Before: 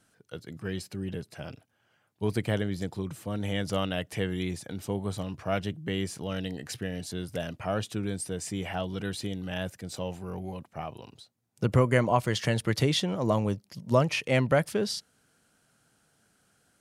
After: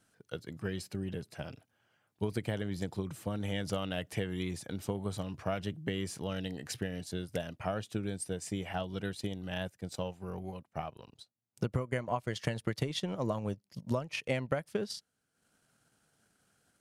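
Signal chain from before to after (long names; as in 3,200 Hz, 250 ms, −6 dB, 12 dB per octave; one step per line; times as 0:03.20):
transient designer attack +6 dB, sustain +2 dB, from 0:07.02 sustain −5 dB, from 0:09.13 sustain −10 dB
downward compressor 6 to 1, threshold −24 dBFS, peak gain reduction 11.5 dB
level −4.5 dB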